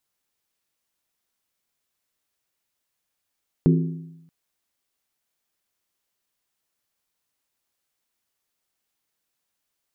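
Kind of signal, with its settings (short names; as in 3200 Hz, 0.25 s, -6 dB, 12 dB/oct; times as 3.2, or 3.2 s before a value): skin hit, lowest mode 164 Hz, decay 0.94 s, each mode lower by 4.5 dB, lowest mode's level -12.5 dB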